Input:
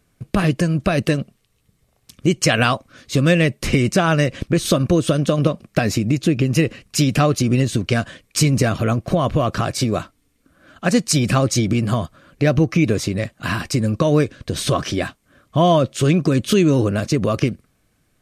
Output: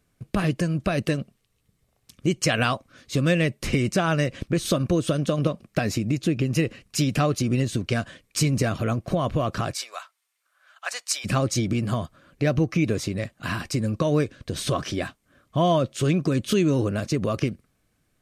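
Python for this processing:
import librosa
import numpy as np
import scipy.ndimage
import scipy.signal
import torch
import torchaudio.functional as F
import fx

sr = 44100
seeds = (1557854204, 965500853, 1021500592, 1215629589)

y = fx.highpass(x, sr, hz=830.0, slope=24, at=(9.73, 11.24), fade=0.02)
y = F.gain(torch.from_numpy(y), -6.0).numpy()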